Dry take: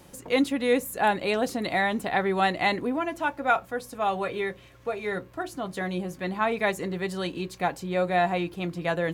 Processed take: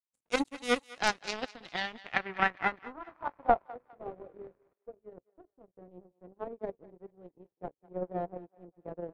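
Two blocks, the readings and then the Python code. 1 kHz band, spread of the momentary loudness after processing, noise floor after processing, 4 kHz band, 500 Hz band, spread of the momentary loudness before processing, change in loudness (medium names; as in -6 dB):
-7.5 dB, 23 LU, under -85 dBFS, -5.5 dB, -10.0 dB, 9 LU, -6.5 dB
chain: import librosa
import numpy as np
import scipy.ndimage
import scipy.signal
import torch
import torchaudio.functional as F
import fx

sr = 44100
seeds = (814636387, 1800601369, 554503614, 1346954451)

y = fx.spec_paint(x, sr, seeds[0], shape='noise', start_s=3.08, length_s=1.66, low_hz=950.0, high_hz=2600.0, level_db=-34.0)
y = fx.power_curve(y, sr, exponent=3.0)
y = fx.filter_sweep_lowpass(y, sr, from_hz=8700.0, to_hz=480.0, start_s=0.78, end_s=3.98, q=2.0)
y = fx.echo_thinned(y, sr, ms=203, feedback_pct=39, hz=810.0, wet_db=-18)
y = y * 10.0 ** (5.5 / 20.0)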